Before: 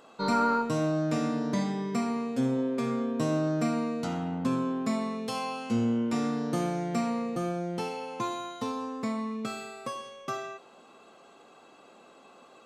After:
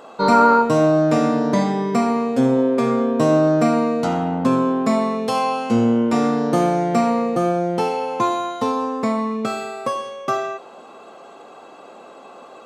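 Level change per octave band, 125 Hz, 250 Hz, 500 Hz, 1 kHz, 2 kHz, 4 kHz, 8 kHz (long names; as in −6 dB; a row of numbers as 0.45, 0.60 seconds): +8.5, +10.0, +14.0, +13.5, +10.5, +8.0, +7.0 decibels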